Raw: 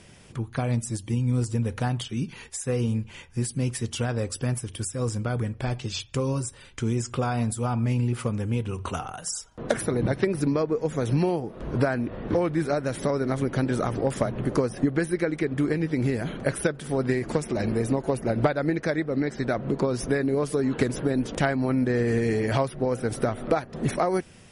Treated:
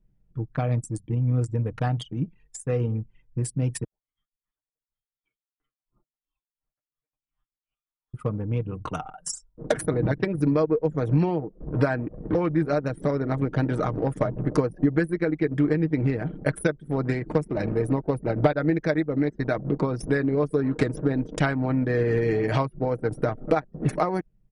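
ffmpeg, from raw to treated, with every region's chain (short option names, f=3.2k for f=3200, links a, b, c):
-filter_complex "[0:a]asettb=1/sr,asplit=3[a][b][c];[a]atrim=end=3.844[d];[b]atrim=start=3.84:end=8.14,asetpts=PTS-STARTPTS,afade=t=in:d=0.004:c=qsin,afade=t=out:st=4.296:d=0.004:c=qsin,aderivative,lowpass=f=3.1k:t=q:w=0.5098,lowpass=f=3.1k:t=q:w=0.6013,lowpass=f=3.1k:t=q:w=0.9,lowpass=f=3.1k:t=q:w=2.563,afreqshift=-3700,aeval=exprs='val(0)*pow(10,-23*(0.5-0.5*cos(2*PI*2.8*n/s))/20)':c=same[e];[c]atrim=start=8.136[f];[d][e]acrossfade=d=0.004:c1=hsin:c2=qsin[g];[g][f]acrossfade=d=0.004:c1=qsin:c2=hsin,anlmdn=39.8,aecho=1:1:6.5:0.48"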